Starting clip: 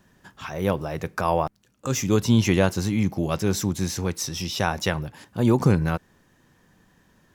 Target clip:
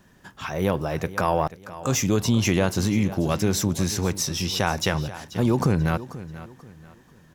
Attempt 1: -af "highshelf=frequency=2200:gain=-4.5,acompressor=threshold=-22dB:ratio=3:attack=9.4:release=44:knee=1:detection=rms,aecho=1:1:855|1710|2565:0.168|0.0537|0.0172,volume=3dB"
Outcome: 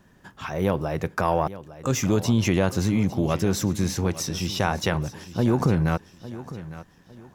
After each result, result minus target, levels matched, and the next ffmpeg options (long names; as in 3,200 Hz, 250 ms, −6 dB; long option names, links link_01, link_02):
echo 369 ms late; 4,000 Hz band −3.0 dB
-af "highshelf=frequency=2200:gain=-4.5,acompressor=threshold=-22dB:ratio=3:attack=9.4:release=44:knee=1:detection=rms,aecho=1:1:486|972|1458:0.168|0.0537|0.0172,volume=3dB"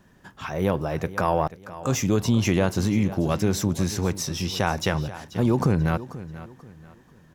4,000 Hz band −3.0 dB
-af "acompressor=threshold=-22dB:ratio=3:attack=9.4:release=44:knee=1:detection=rms,aecho=1:1:486|972|1458:0.168|0.0537|0.0172,volume=3dB"